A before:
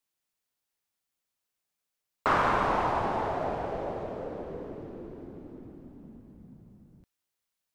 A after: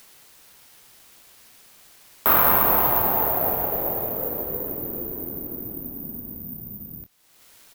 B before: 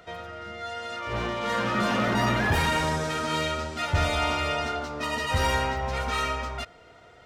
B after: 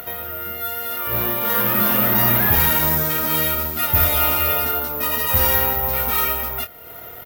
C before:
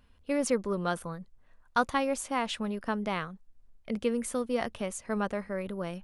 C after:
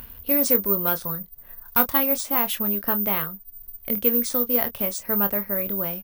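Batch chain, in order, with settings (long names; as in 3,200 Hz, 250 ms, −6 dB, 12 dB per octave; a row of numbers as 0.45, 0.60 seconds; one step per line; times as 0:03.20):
in parallel at +2 dB: upward compression, threshold −30 dBFS
on the sum: asymmetric clip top −14.5 dBFS
double-tracking delay 25 ms −10 dB
bad sample-rate conversion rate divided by 3×, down none, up zero stuff
level −4 dB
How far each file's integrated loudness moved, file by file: +9.0, +10.0, +11.0 LU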